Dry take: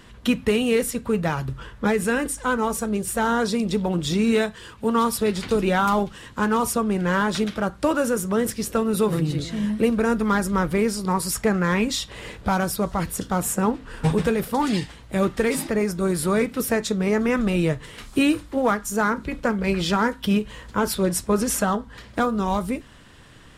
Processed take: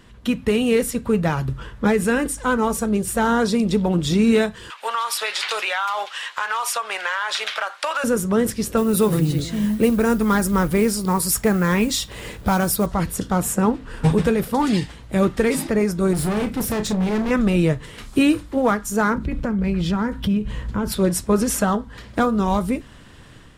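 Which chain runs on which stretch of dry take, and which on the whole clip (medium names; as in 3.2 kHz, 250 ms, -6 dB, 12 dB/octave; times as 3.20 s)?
4.70–8.04 s: high-pass 650 Hz 24 dB/octave + peaking EQ 2.6 kHz +12.5 dB 2.9 oct + compression 10:1, threshold -21 dBFS
8.77–12.86 s: modulation noise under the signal 30 dB + treble shelf 9 kHz +11 dB
16.13–17.31 s: bass shelf 200 Hz +7 dB + hard clipper -24 dBFS + doubling 33 ms -9 dB
19.15–20.92 s: tone controls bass +10 dB, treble -4 dB + compression 3:1, threshold -25 dBFS
whole clip: bass shelf 410 Hz +3.5 dB; level rider gain up to 5.5 dB; trim -3.5 dB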